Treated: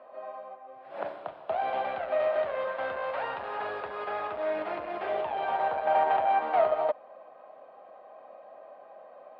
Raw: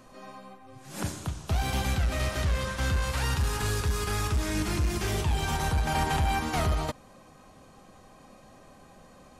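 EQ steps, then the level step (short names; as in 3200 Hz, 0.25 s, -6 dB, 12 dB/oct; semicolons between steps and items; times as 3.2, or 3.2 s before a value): running mean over 7 samples; resonant high-pass 620 Hz, resonance Q 4.8; air absorption 370 m; 0.0 dB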